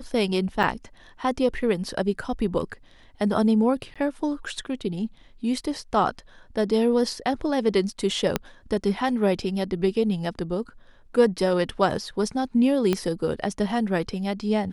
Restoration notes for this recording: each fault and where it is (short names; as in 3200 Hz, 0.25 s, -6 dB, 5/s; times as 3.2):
0.63–0.64 gap 5.9 ms
3.94–3.96 gap 16 ms
8.36 pop -7 dBFS
12.93 pop -10 dBFS